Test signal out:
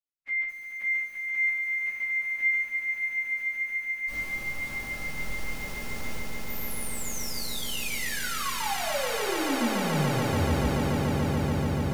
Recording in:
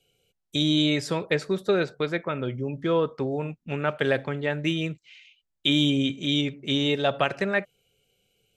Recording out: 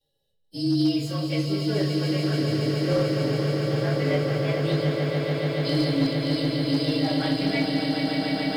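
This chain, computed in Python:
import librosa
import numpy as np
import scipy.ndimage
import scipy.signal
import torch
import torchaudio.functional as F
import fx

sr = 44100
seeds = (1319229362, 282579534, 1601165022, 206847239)

y = fx.partial_stretch(x, sr, pct=111)
y = fx.echo_swell(y, sr, ms=144, loudest=8, wet_db=-7)
y = fx.room_shoebox(y, sr, seeds[0], volume_m3=310.0, walls='furnished', distance_m=2.3)
y = np.clip(10.0 ** (8.5 / 20.0) * y, -1.0, 1.0) / 10.0 ** (8.5 / 20.0)
y = fx.echo_crushed(y, sr, ms=212, feedback_pct=35, bits=7, wet_db=-9.5)
y = y * librosa.db_to_amplitude(-7.5)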